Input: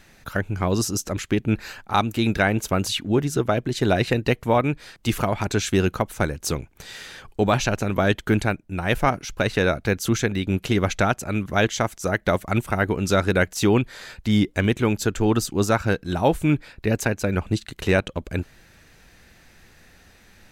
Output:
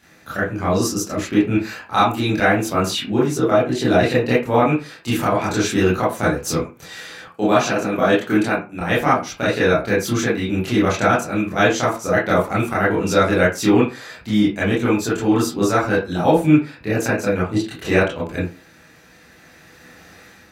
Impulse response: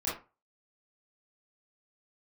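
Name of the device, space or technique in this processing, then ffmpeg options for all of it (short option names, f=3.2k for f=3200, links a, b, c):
far laptop microphone: -filter_complex "[1:a]atrim=start_sample=2205[a];[0:a][a]afir=irnorm=-1:irlink=0,highpass=140,dynaudnorm=f=920:g=3:m=7.5dB,asettb=1/sr,asplit=3[b][c][d];[b]atrim=end=7.284[e];[c]atrim=start=7.28:end=8.81,asetpts=PTS-STARTPTS,afade=t=in:d=0.004:c=qsin,afade=t=out:st=1.526:d=0.004:c=qsin,highpass=140[f];[d]atrim=start=8.806[g];[e][f]acrossfade=d=0.004:c1=hsin:c2=qsin[h];[h][g]acrossfade=d=0.004:c1=qsin:c2=hsin,volume=-1.5dB"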